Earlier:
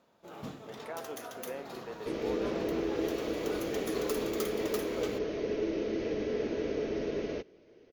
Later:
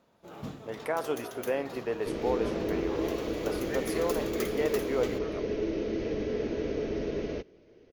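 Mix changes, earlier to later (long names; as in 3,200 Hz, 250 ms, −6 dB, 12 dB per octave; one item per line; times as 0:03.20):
speech +11.0 dB
master: add low-shelf EQ 140 Hz +9 dB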